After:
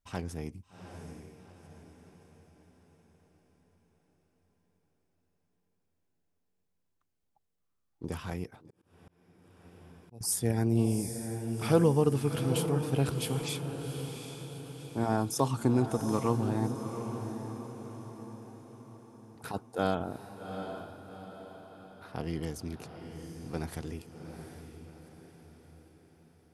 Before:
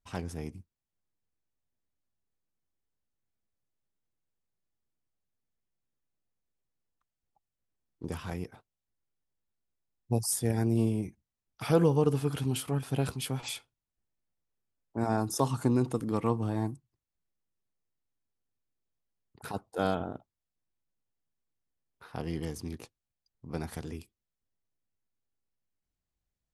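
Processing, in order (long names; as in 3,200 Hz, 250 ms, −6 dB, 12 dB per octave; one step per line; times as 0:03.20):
feedback delay with all-pass diffusion 770 ms, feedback 49%, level −8 dB
0:08.52–0:10.21: volume swells 773 ms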